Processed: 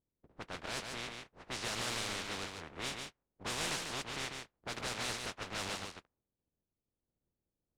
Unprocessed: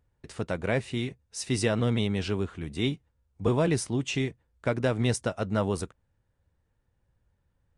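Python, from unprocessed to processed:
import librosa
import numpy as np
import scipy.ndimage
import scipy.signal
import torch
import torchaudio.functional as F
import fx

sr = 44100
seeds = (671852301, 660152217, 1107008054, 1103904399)

p1 = fx.spec_flatten(x, sr, power=0.14)
p2 = np.clip(p1, -10.0 ** (-25.5 / 20.0), 10.0 ** (-25.5 / 20.0))
p3 = fx.env_lowpass(p2, sr, base_hz=340.0, full_db=-24.0)
p4 = p3 + fx.echo_single(p3, sr, ms=145, db=-5.0, dry=0)
y = p4 * librosa.db_to_amplitude(-7.0)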